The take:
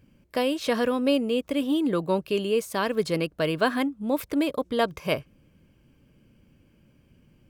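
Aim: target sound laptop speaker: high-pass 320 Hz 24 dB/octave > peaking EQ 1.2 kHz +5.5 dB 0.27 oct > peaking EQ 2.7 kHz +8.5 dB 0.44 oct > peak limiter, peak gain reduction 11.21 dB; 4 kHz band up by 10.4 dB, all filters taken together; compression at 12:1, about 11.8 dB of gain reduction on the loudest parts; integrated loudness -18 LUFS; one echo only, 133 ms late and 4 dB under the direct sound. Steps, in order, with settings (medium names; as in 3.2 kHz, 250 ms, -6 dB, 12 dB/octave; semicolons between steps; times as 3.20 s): peaking EQ 4 kHz +8.5 dB; compression 12:1, threshold -29 dBFS; high-pass 320 Hz 24 dB/octave; peaking EQ 1.2 kHz +5.5 dB 0.27 oct; peaking EQ 2.7 kHz +8.5 dB 0.44 oct; delay 133 ms -4 dB; trim +18 dB; peak limiter -8.5 dBFS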